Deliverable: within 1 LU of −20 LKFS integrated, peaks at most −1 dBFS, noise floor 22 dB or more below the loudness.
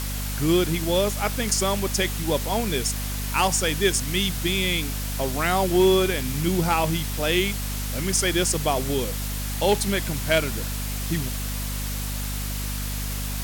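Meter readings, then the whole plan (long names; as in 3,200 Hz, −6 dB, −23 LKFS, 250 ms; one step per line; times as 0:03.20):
mains hum 50 Hz; hum harmonics up to 250 Hz; level of the hum −27 dBFS; background noise floor −29 dBFS; target noise floor −46 dBFS; integrated loudness −24.0 LKFS; sample peak −8.0 dBFS; target loudness −20.0 LKFS
→ hum removal 50 Hz, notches 5
broadband denoise 17 dB, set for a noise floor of −29 dBFS
level +4 dB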